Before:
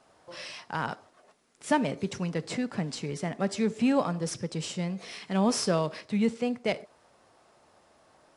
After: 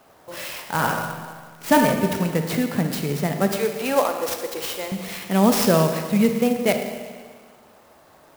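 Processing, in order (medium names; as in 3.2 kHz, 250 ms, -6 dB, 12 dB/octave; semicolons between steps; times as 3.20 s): 0.61–1.85 s: reverb throw, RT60 0.89 s, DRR 2 dB; 3.51–4.92 s: high-pass 380 Hz 24 dB/octave; Schroeder reverb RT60 1.7 s, DRR 5.5 dB; sampling jitter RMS 0.039 ms; trim +8 dB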